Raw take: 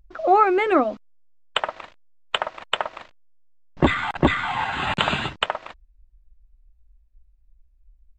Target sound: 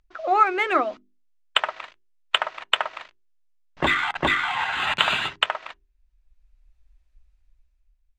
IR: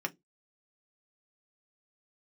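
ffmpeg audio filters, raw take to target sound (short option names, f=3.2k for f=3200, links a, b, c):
-filter_complex "[0:a]asplit=2[a][b];[1:a]atrim=start_sample=2205,asetrate=48510,aresample=44100[c];[b][c]afir=irnorm=-1:irlink=0,volume=-15.5dB[d];[a][d]amix=inputs=2:normalize=0,dynaudnorm=f=140:g=11:m=11dB,tiltshelf=f=720:g=-7,adynamicsmooth=sensitivity=2:basefreq=7.4k,bandreject=f=50:t=h:w=6,bandreject=f=100:t=h:w=6,bandreject=f=150:t=h:w=6,bandreject=f=200:t=h:w=6,bandreject=f=250:t=h:w=6,bandreject=f=300:t=h:w=6,bandreject=f=350:t=h:w=6,bandreject=f=400:t=h:w=6,volume=-5.5dB"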